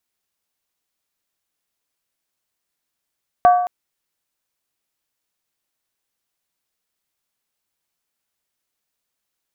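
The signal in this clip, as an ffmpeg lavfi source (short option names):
-f lavfi -i "aevalsrc='0.501*pow(10,-3*t/0.83)*sin(2*PI*717*t)+0.158*pow(10,-3*t/0.657)*sin(2*PI*1142.9*t)+0.0501*pow(10,-3*t/0.568)*sin(2*PI*1531.5*t)+0.0158*pow(10,-3*t/0.548)*sin(2*PI*1646.2*t)+0.00501*pow(10,-3*t/0.51)*sin(2*PI*1902.2*t)':d=0.22:s=44100"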